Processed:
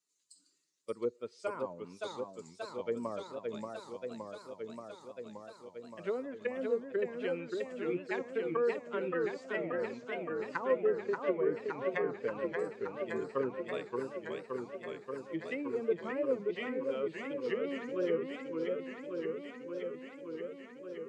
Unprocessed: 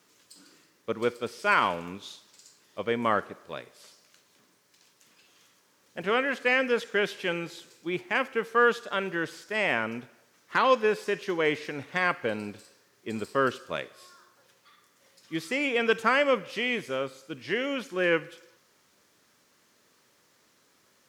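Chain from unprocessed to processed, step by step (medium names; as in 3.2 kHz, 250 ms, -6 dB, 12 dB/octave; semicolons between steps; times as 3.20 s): expander on every frequency bin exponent 1.5; low-pass that closes with the level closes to 460 Hz, closed at -26.5 dBFS; cabinet simulation 210–9200 Hz, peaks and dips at 210 Hz -7 dB, 310 Hz -4 dB, 760 Hz -7 dB, 1.5 kHz -4 dB, 3.4 kHz -4 dB, 5.5 kHz -8 dB; modulated delay 575 ms, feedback 79%, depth 192 cents, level -4 dB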